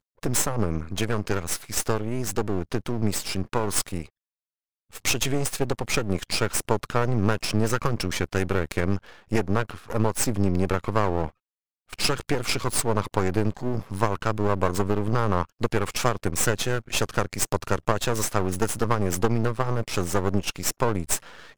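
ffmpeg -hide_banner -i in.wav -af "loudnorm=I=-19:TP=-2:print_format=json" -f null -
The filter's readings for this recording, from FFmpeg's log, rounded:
"input_i" : "-26.2",
"input_tp" : "-3.9",
"input_lra" : "2.2",
"input_thresh" : "-36.4",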